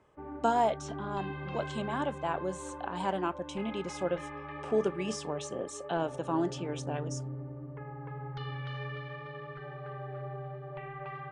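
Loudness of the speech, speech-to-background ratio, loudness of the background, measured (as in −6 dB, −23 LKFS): −34.5 LKFS, 7.5 dB, −42.0 LKFS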